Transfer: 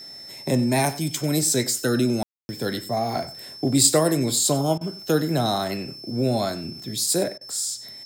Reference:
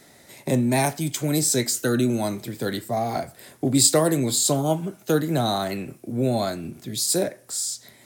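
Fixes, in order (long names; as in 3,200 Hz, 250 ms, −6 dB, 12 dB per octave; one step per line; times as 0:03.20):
notch filter 5,300 Hz, Q 30
ambience match 0:02.23–0:02.49
repair the gap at 0:04.78/0:07.38, 29 ms
echo removal 94 ms −17.5 dB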